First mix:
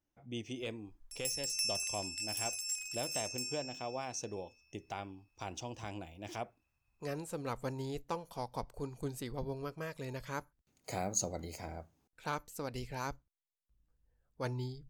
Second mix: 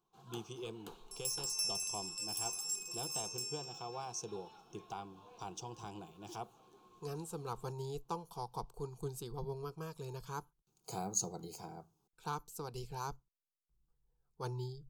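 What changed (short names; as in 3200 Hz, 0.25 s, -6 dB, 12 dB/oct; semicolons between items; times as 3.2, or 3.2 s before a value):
first sound: unmuted; master: add fixed phaser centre 390 Hz, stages 8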